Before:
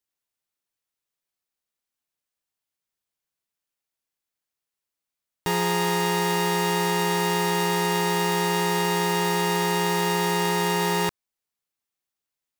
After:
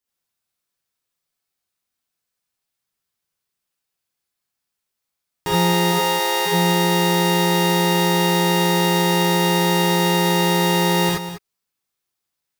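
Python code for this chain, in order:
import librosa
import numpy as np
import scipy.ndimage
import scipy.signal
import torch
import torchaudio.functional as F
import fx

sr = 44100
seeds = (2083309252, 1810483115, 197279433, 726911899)

y = fx.highpass(x, sr, hz=420.0, slope=24, at=(5.91, 6.45), fade=0.02)
y = y + 10.0 ** (-12.0 / 20.0) * np.pad(y, (int(198 * sr / 1000.0), 0))[:len(y)]
y = fx.rev_gated(y, sr, seeds[0], gate_ms=100, shape='rising', drr_db=-4.0)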